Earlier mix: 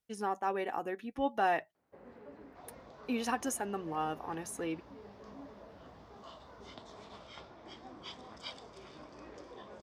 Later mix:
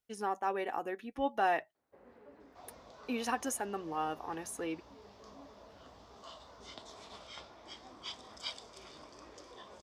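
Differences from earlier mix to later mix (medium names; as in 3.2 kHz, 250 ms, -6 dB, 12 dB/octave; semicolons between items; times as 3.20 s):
first sound -4.0 dB; second sound: add treble shelf 4.4 kHz +10.5 dB; master: add peaking EQ 150 Hz -5.5 dB 1.3 oct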